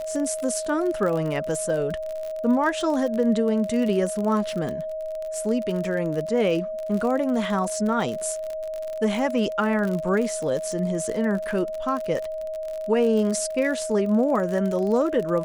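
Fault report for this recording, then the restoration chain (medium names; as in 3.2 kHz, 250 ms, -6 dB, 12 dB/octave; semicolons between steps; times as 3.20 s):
crackle 44 per s -28 dBFS
whine 630 Hz -28 dBFS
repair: de-click; band-stop 630 Hz, Q 30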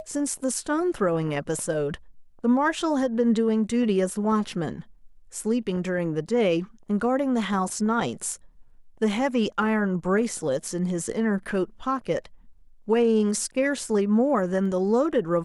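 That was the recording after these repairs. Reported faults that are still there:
nothing left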